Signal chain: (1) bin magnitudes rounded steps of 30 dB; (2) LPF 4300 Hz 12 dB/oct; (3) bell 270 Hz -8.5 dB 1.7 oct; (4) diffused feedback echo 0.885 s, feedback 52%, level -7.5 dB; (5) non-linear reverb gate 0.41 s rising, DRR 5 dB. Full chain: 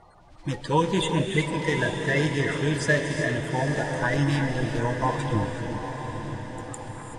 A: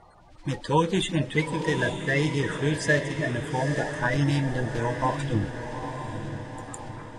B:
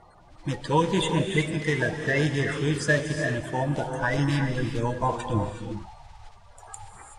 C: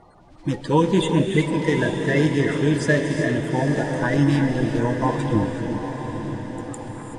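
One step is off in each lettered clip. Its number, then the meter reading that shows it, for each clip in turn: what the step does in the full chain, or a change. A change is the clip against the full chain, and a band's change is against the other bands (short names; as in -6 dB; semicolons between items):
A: 5, echo-to-direct -2.0 dB to -6.0 dB; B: 4, echo-to-direct -2.0 dB to -5.0 dB; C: 3, 250 Hz band +6.5 dB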